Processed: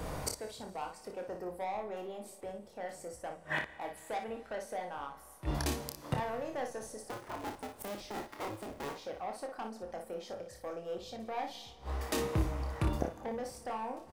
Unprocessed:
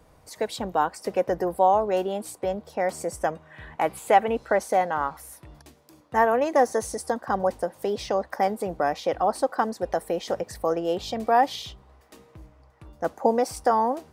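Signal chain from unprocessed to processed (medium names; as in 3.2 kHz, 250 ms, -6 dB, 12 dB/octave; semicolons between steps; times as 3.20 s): 7.04–8.95 s: cycle switcher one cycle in 2, inverted; saturation -19 dBFS, distortion -11 dB; inverted gate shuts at -36 dBFS, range -30 dB; early reflections 28 ms -6.5 dB, 58 ms -7.5 dB; Schroeder reverb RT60 2.7 s, combs from 28 ms, DRR 15.5 dB; trim +15 dB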